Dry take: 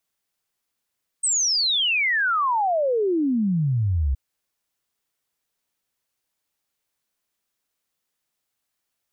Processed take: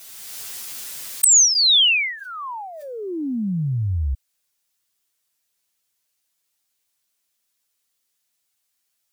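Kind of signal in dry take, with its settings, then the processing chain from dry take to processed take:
log sweep 8500 Hz -> 63 Hz 2.92 s -18.5 dBFS
high shelf 2300 Hz +11 dB; envelope flanger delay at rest 9.2 ms, full sweep at -15.5 dBFS; backwards sustainer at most 23 dB/s

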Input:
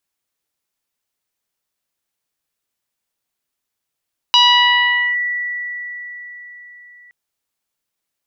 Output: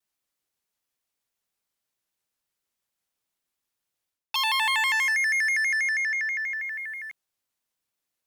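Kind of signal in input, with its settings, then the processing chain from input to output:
FM tone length 2.77 s, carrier 1950 Hz, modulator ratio 0.5, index 2.3, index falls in 0.82 s linear, decay 4.43 s, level -5 dB
reverse; compressor 16:1, threshold -24 dBFS; reverse; sample leveller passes 2; shaped vibrato square 6.2 Hz, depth 160 cents

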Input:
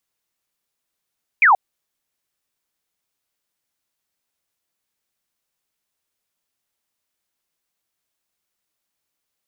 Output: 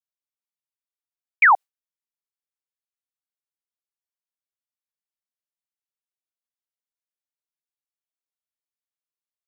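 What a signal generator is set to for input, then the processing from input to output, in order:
laser zap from 2500 Hz, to 710 Hz, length 0.13 s sine, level -9 dB
HPF 600 Hz; gate with hold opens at -10 dBFS

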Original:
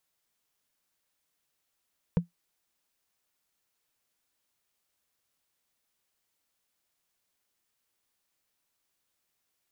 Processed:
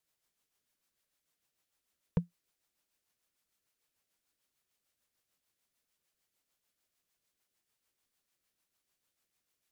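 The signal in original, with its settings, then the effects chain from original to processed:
wood hit, lowest mode 172 Hz, decay 0.13 s, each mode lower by 7.5 dB, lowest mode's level -16 dB
rotary speaker horn 6.7 Hz

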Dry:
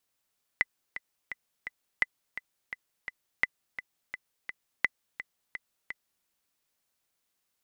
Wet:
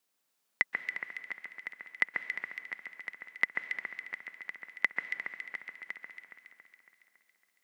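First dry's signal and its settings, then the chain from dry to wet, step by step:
metronome 170 bpm, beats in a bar 4, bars 4, 2010 Hz, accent 13 dB -10 dBFS
HPF 160 Hz 24 dB/oct; on a send: echo with dull and thin repeats by turns 0.139 s, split 2000 Hz, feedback 74%, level -3.5 dB; on the sum: plate-style reverb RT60 2 s, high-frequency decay 0.9×, pre-delay 0.115 s, DRR 12 dB

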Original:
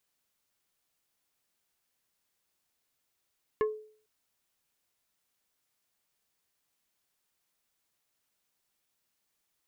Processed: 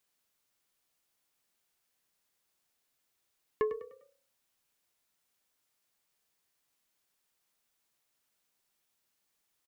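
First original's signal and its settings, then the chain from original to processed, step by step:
wood hit plate, lowest mode 430 Hz, decay 0.49 s, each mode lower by 6.5 dB, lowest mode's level -22 dB
bell 65 Hz -2.5 dB 2.7 oct; on a send: frequency-shifting echo 0.1 s, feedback 40%, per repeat +32 Hz, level -12.5 dB

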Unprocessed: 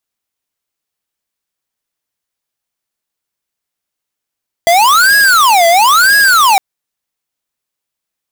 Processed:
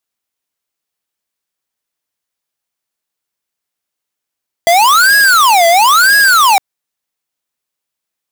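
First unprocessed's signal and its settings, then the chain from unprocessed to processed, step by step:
siren wail 671–1660 Hz 1/s square -7.5 dBFS 1.91 s
low shelf 130 Hz -5.5 dB

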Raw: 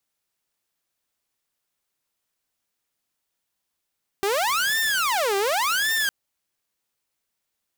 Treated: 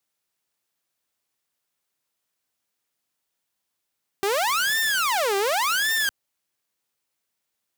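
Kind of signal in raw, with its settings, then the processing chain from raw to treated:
siren wail 392–1800 Hz 0.88/s saw -18 dBFS 1.86 s
HPF 82 Hz 6 dB/oct

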